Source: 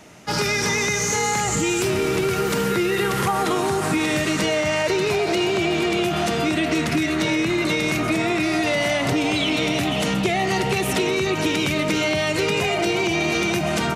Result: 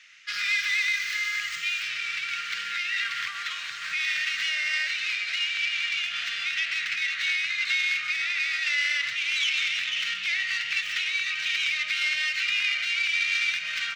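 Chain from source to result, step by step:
stylus tracing distortion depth 0.2 ms
inverse Chebyshev high-pass filter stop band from 900 Hz, stop band 40 dB
high-frequency loss of the air 180 metres
level +4 dB

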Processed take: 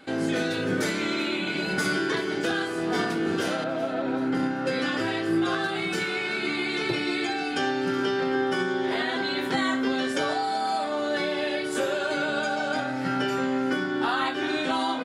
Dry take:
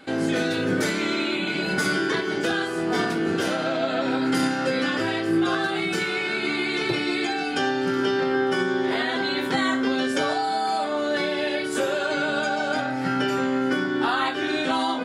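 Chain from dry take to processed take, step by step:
0:03.64–0:04.67: low-pass filter 1,200 Hz 6 dB per octave
repeating echo 381 ms, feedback 58%, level −17 dB
level −2.5 dB

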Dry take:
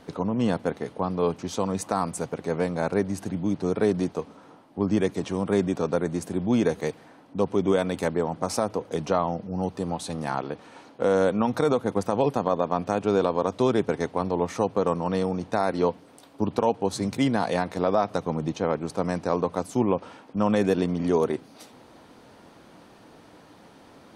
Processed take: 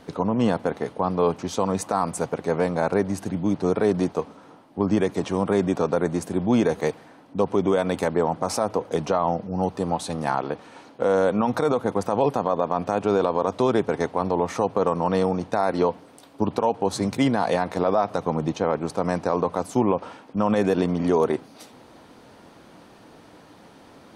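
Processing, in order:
dynamic equaliser 870 Hz, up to +5 dB, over −37 dBFS, Q 0.72
brickwall limiter −12.5 dBFS, peak gain reduction 7 dB
level +2 dB

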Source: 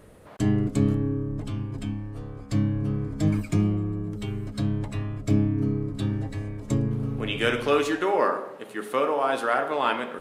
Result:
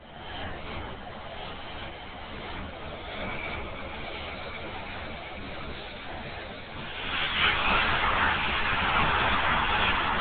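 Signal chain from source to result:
peak hold with a rise ahead of every peak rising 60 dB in 1.33 s
Butterworth high-pass 290 Hz
gate on every frequency bin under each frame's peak −10 dB weak
dynamic equaliser 410 Hz, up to −7 dB, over −47 dBFS, Q 1.1
0:04.49–0:06.95: compressor whose output falls as the input rises −44 dBFS, ratio −1
echo that builds up and dies away 123 ms, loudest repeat 8, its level −11 dB
linear-prediction vocoder at 8 kHz whisper
string-ensemble chorus
level +6 dB

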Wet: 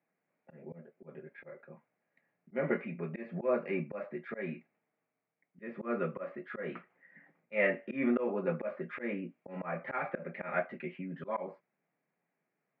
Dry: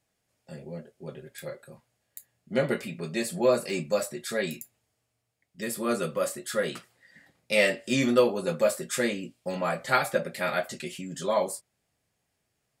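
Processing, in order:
Chebyshev band-pass filter 160–2,300 Hz, order 4
volume swells 154 ms
level −2.5 dB

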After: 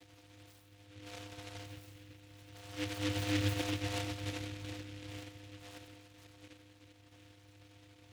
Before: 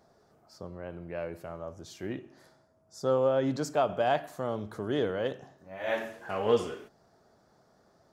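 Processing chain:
hearing-aid frequency compression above 1,600 Hz 1.5 to 1
source passing by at 0:03.53, 16 m/s, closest 2.4 metres
high-shelf EQ 4,300 Hz +10.5 dB
upward compression, threshold −50 dBFS
volume swells 685 ms
in parallel at +3 dB: downward compressor, threshold −51 dBFS, peak gain reduction 19 dB
on the sum: multi-voice chorus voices 6, 0.51 Hz, delay 11 ms, depth 3.1 ms
echo with a time of its own for lows and highs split 460 Hz, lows 377 ms, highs 92 ms, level −5.5 dB
delay with pitch and tempo change per echo 86 ms, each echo +2 semitones, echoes 2
channel vocoder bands 8, square 101 Hz
short delay modulated by noise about 2,500 Hz, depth 0.23 ms
level +4 dB

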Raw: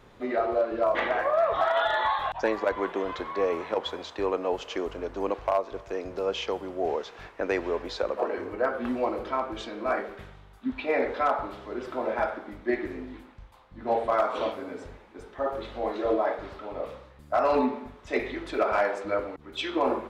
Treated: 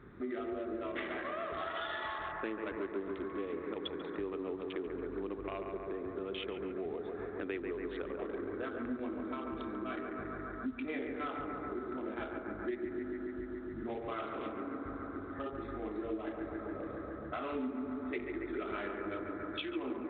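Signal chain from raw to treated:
adaptive Wiener filter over 15 samples
on a send: bucket-brigade delay 140 ms, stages 2,048, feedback 76%, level −6.5 dB
on the sum: dynamic equaliser 1,500 Hz, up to −6 dB, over −41 dBFS, Q 1.7
high-pass filter 71 Hz 6 dB per octave
flat-topped bell 700 Hz −13.5 dB 1.3 octaves
mains-hum notches 60/120/180/240 Hz
downward compressor 3 to 1, threshold −43 dBFS, peak gain reduction 14 dB
level +4 dB
mu-law 64 kbit/s 8,000 Hz

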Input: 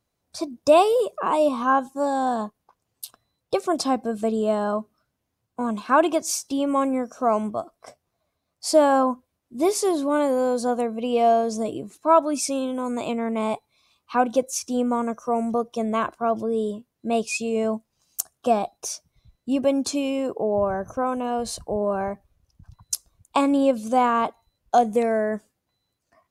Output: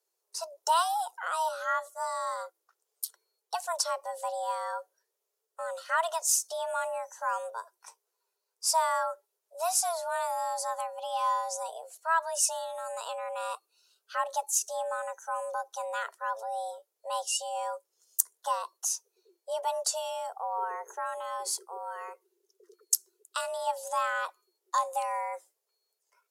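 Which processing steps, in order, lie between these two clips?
0:21.56–0:23.67: parametric band 400 Hz −6 dB 2.2 octaves
frequency shifter +330 Hz
bass and treble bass +1 dB, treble +13 dB
level −10.5 dB

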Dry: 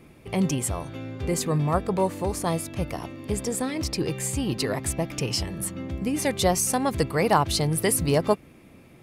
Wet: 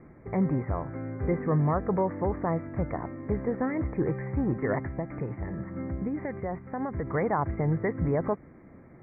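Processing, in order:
brickwall limiter −17 dBFS, peak gain reduction 9.5 dB
0:04.78–0:07.07: downward compressor, threshold −28 dBFS, peak gain reduction 6.5 dB
Butterworth low-pass 2,100 Hz 96 dB per octave

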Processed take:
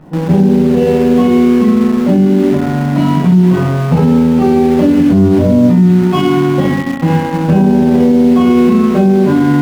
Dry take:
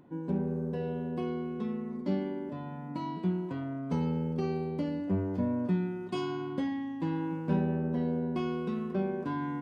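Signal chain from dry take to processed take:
bass and treble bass 0 dB, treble −12 dB
hum removal 132 Hz, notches 2
surface crackle 93 per second −56 dBFS
rectangular room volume 730 cubic metres, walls furnished, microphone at 6.5 metres
in parallel at −8.5 dB: bit reduction 5 bits
on the sum: high-shelf EQ 4,400 Hz −6.5 dB
boost into a limiter +14 dB
level −1 dB

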